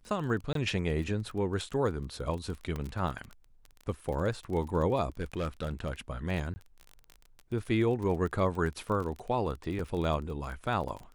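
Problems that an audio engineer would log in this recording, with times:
crackle 26/s -36 dBFS
0.53–0.55 gap 23 ms
2.76 pop -23 dBFS
5.1–5.93 clipped -28 dBFS
6.54–6.56 gap 20 ms
9.79 gap 3 ms

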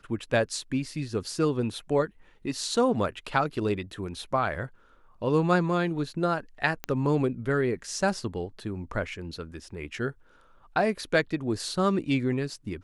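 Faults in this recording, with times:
6.84 pop -15 dBFS

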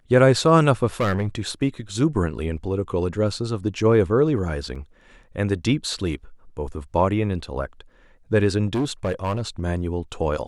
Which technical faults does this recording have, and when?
1–1.4 clipped -17 dBFS
4.75 gap 4.8 ms
8.66–9.62 clipped -19 dBFS

